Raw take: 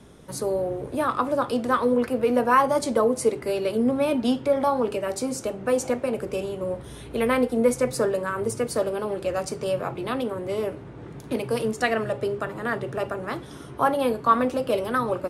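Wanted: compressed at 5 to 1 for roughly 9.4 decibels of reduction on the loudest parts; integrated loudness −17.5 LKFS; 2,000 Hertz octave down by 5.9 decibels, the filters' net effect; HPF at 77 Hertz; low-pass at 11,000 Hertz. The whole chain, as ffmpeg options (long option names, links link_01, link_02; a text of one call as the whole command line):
ffmpeg -i in.wav -af "highpass=77,lowpass=11000,equalizer=frequency=2000:width_type=o:gain=-8,acompressor=threshold=-27dB:ratio=5,volume=14dB" out.wav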